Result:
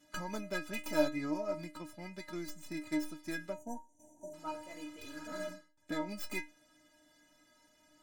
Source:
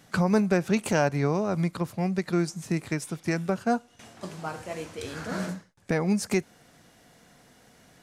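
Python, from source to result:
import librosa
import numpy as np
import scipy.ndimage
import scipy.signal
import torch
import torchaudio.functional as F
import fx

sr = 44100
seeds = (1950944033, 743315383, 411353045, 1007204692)

y = fx.tracing_dist(x, sr, depth_ms=0.2)
y = fx.spec_box(y, sr, start_s=3.53, length_s=0.81, low_hz=950.0, high_hz=5700.0, gain_db=-29)
y = fx.stiff_resonator(y, sr, f0_hz=300.0, decay_s=0.27, stiffness=0.008)
y = y * librosa.db_to_amplitude(5.0)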